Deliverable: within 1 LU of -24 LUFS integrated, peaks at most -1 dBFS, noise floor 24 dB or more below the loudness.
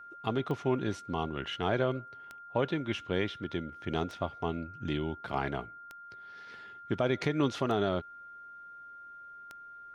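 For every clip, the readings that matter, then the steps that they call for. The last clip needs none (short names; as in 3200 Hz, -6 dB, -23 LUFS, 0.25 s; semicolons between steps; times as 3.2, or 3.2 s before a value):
clicks 6; steady tone 1400 Hz; tone level -46 dBFS; loudness -33.0 LUFS; peak -16.0 dBFS; loudness target -24.0 LUFS
-> de-click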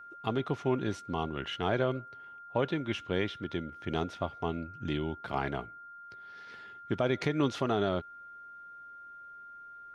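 clicks 0; steady tone 1400 Hz; tone level -46 dBFS
-> notch 1400 Hz, Q 30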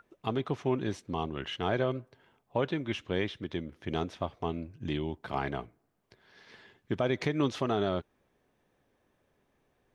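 steady tone none; loudness -33.5 LUFS; peak -16.0 dBFS; loudness target -24.0 LUFS
-> gain +9.5 dB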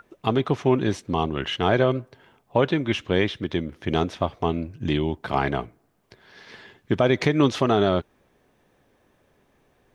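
loudness -24.0 LUFS; peak -6.5 dBFS; noise floor -65 dBFS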